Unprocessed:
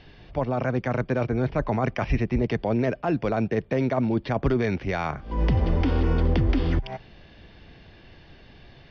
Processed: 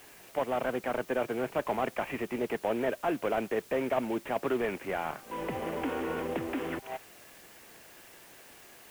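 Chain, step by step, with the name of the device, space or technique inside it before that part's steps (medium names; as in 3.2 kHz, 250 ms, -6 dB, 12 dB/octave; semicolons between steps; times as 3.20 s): army field radio (band-pass 380–3300 Hz; CVSD coder 16 kbps; white noise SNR 22 dB); trim -1.5 dB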